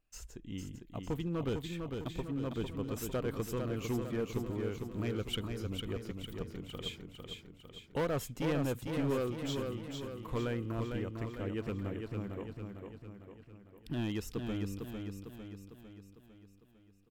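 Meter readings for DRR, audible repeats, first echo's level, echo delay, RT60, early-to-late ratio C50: no reverb audible, 6, −5.0 dB, 452 ms, no reverb audible, no reverb audible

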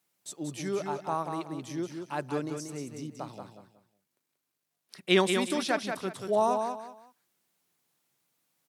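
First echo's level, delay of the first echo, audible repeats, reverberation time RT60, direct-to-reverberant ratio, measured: −6.0 dB, 184 ms, 3, no reverb audible, no reverb audible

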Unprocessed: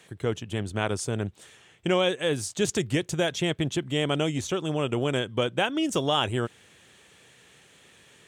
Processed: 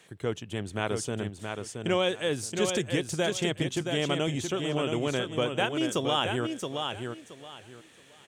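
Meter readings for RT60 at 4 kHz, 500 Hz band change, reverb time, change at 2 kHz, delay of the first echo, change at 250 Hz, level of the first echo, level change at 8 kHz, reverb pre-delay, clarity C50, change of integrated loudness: no reverb audible, −1.5 dB, no reverb audible, −1.5 dB, 673 ms, −2.0 dB, −5.5 dB, −1.5 dB, no reverb audible, no reverb audible, −2.5 dB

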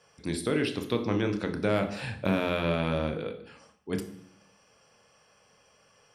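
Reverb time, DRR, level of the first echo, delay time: 0.65 s, 6.5 dB, no echo audible, no echo audible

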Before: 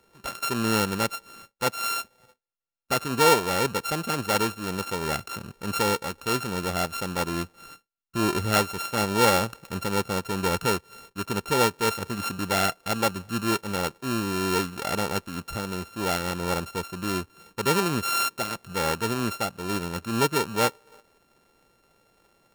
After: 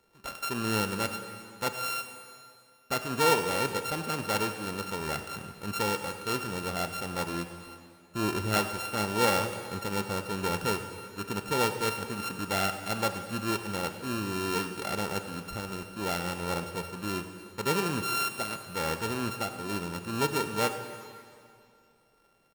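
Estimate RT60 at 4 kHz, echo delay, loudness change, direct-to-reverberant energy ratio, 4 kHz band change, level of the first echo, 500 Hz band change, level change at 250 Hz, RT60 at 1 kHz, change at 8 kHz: 2.2 s, 99 ms, −4.5 dB, 7.0 dB, −4.5 dB, −17.5 dB, −5.0 dB, −5.0 dB, 2.4 s, −5.5 dB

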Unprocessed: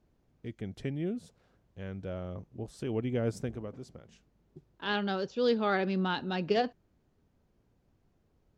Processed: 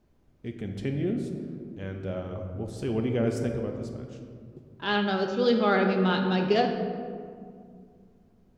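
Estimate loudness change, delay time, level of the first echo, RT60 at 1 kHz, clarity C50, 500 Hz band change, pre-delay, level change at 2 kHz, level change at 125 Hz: +5.0 dB, no echo audible, no echo audible, 1.9 s, 5.0 dB, +5.5 dB, 3 ms, +5.0 dB, +6.0 dB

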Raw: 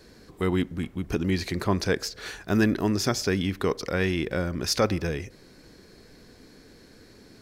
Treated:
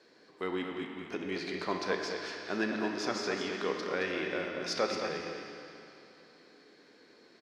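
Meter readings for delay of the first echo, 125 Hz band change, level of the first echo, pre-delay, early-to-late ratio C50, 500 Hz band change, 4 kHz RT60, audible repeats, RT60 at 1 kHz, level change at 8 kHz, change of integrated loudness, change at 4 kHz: 220 ms, −20.0 dB, −6.5 dB, 10 ms, 1.5 dB, −6.0 dB, 2.7 s, 1, 2.9 s, −11.5 dB, −8.0 dB, −6.5 dB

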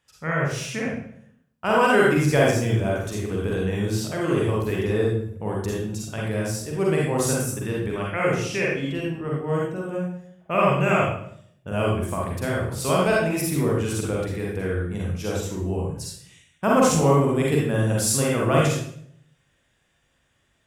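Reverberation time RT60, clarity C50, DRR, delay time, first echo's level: 0.65 s, −0.5 dB, −4.0 dB, no echo audible, no echo audible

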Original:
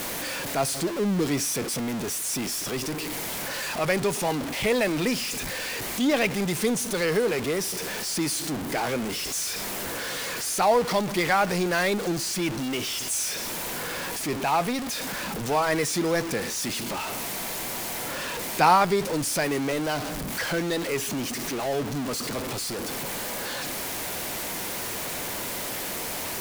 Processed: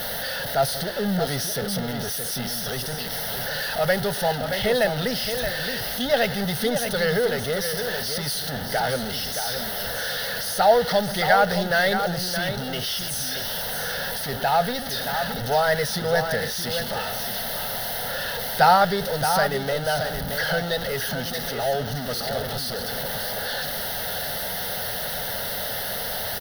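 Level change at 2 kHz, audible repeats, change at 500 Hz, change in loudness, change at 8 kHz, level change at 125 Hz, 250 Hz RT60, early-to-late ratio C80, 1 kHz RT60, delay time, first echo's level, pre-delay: +3.5 dB, 1, +3.5 dB, +2.5 dB, −2.5 dB, +3.5 dB, no reverb audible, no reverb audible, no reverb audible, 622 ms, −7.5 dB, no reverb audible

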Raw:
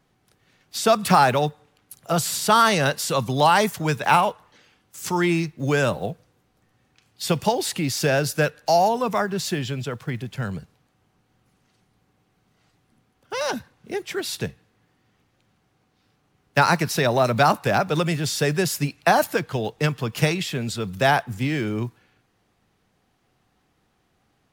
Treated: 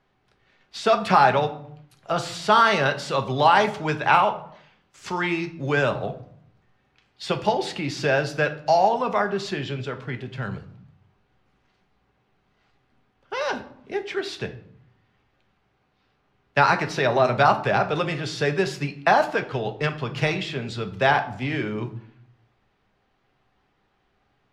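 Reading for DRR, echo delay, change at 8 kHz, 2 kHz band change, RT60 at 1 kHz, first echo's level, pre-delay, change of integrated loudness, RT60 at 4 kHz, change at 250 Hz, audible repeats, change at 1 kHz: 6.0 dB, no echo audible, −12.0 dB, +0.5 dB, 0.65 s, no echo audible, 5 ms, −0.5 dB, 0.40 s, −4.0 dB, no echo audible, +0.5 dB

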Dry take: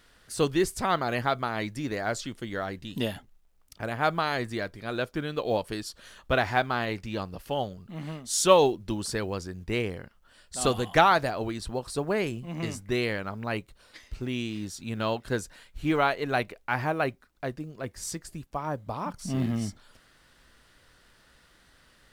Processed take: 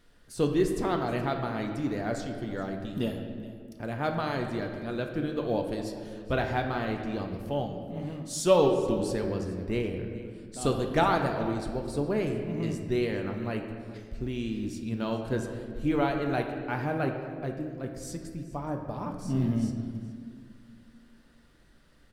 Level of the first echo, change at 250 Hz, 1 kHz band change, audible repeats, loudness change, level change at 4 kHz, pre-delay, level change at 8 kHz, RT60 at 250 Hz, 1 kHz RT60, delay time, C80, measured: −18.5 dB, +2.0 dB, −4.5 dB, 1, −1.5 dB, −6.5 dB, 3 ms, −7.5 dB, 2.8 s, 1.6 s, 422 ms, 6.5 dB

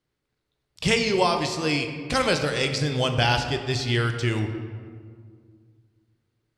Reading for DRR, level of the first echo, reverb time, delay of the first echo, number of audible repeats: 5.5 dB, no echo audible, 2.0 s, no echo audible, no echo audible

